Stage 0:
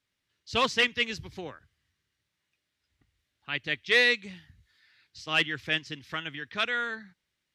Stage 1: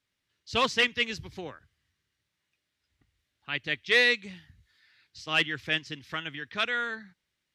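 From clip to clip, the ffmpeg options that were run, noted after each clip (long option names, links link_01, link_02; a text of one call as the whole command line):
ffmpeg -i in.wav -af anull out.wav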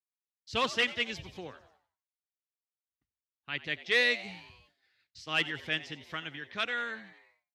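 ffmpeg -i in.wav -filter_complex "[0:a]asplit=7[link_01][link_02][link_03][link_04][link_05][link_06][link_07];[link_02]adelay=90,afreqshift=100,volume=-17dB[link_08];[link_03]adelay=180,afreqshift=200,volume=-21.3dB[link_09];[link_04]adelay=270,afreqshift=300,volume=-25.6dB[link_10];[link_05]adelay=360,afreqshift=400,volume=-29.9dB[link_11];[link_06]adelay=450,afreqshift=500,volume=-34.2dB[link_12];[link_07]adelay=540,afreqshift=600,volume=-38.5dB[link_13];[link_01][link_08][link_09][link_10][link_11][link_12][link_13]amix=inputs=7:normalize=0,agate=range=-33dB:threshold=-57dB:ratio=3:detection=peak,volume=-4dB" out.wav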